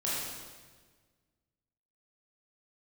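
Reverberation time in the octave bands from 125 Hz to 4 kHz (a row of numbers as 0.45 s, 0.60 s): 2.0 s, 1.8 s, 1.6 s, 1.4 s, 1.3 s, 1.3 s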